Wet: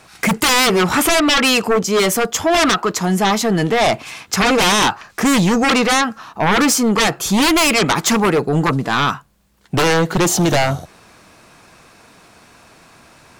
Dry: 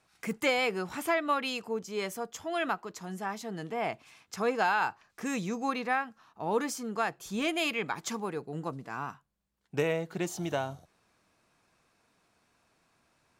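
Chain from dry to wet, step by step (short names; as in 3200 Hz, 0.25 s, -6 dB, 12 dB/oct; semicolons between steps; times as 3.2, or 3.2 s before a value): dynamic EQ 1300 Hz, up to +6 dB, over -50 dBFS, Q 5.6; in parallel at -3 dB: limiter -22.5 dBFS, peak gain reduction 8 dB; on the sum: sine folder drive 14 dB, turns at -12 dBFS; gain +1.5 dB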